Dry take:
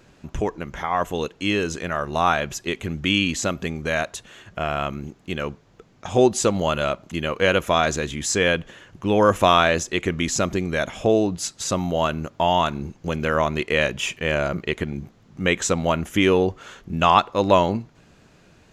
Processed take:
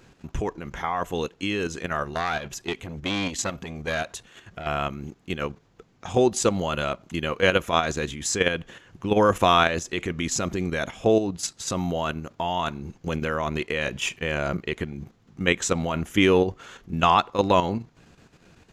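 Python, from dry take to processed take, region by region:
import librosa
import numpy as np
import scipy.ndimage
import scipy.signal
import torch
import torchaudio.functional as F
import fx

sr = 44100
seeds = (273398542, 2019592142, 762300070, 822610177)

y = fx.chain(x, sr, fx.dynamic_eq(hz=3100.0, q=1.5, threshold_db=-34.0, ratio=4.0, max_db=3),
    fx.transformer_sat(knee_hz=1900.0), at=(2.13, 4.67))
y = fx.notch(y, sr, hz=600.0, q=12.0)
y = fx.level_steps(y, sr, step_db=9)
y = F.gain(torch.from_numpy(y), 1.0).numpy()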